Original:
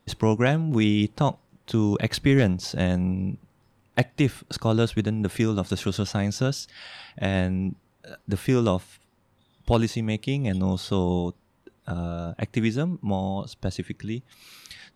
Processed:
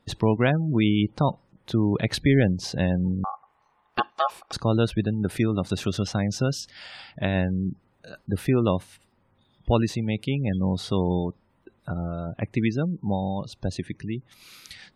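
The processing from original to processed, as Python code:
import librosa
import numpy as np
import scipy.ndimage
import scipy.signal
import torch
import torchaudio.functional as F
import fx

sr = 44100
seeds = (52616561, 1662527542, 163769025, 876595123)

y = fx.spec_gate(x, sr, threshold_db=-30, keep='strong')
y = fx.ring_mod(y, sr, carrier_hz=960.0, at=(3.24, 4.53))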